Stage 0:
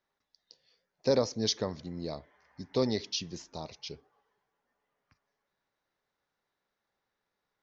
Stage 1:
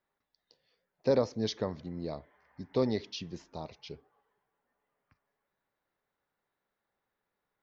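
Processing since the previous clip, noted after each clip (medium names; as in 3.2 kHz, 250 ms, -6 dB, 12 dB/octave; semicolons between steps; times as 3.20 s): peaking EQ 6.2 kHz -11.5 dB 1.4 oct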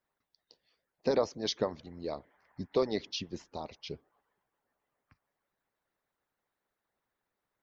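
harmonic-percussive split harmonic -18 dB; trim +4 dB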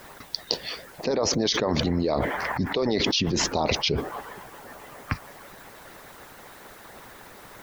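level flattener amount 100%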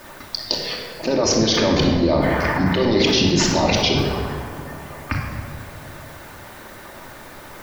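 simulated room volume 2300 m³, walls mixed, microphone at 2.6 m; trim +2.5 dB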